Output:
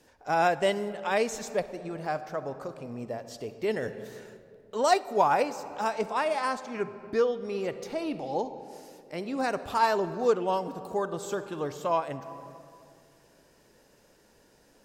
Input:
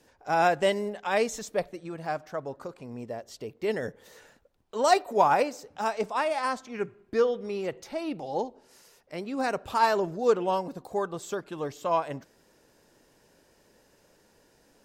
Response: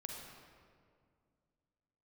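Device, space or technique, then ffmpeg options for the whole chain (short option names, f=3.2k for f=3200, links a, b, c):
ducked reverb: -filter_complex "[0:a]asplit=3[a][b][c];[1:a]atrim=start_sample=2205[d];[b][d]afir=irnorm=-1:irlink=0[e];[c]apad=whole_len=654631[f];[e][f]sidechaincompress=threshold=-26dB:ratio=10:attack=9.3:release=755,volume=-2dB[g];[a][g]amix=inputs=2:normalize=0,volume=-2.5dB"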